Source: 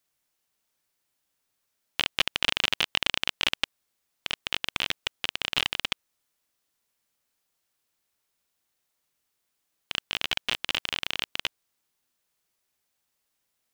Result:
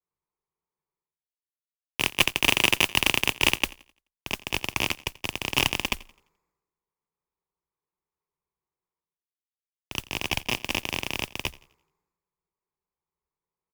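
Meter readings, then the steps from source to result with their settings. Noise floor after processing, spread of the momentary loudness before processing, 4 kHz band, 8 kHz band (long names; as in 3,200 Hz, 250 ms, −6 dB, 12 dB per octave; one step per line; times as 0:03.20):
below −85 dBFS, 9 LU, +0.5 dB, +8.5 dB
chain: adaptive Wiener filter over 15 samples
EQ curve with evenly spaced ripples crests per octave 0.76, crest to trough 12 dB
reversed playback
upward compression, threshold −36 dBFS
reversed playback
noise that follows the level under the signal 13 dB
harmonic generator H 8 −17 dB, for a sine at −3 dBFS
on a send: repeating echo 86 ms, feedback 57%, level −19.5 dB
on the sum: multiband upward and downward expander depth 100%
level −2 dB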